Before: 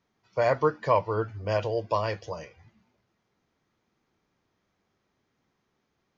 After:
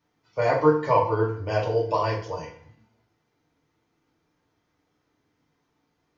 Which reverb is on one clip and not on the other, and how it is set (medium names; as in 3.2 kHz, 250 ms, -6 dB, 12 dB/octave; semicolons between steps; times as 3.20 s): FDN reverb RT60 0.53 s, low-frequency decay 1.05×, high-frequency decay 0.75×, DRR -3.5 dB; trim -2.5 dB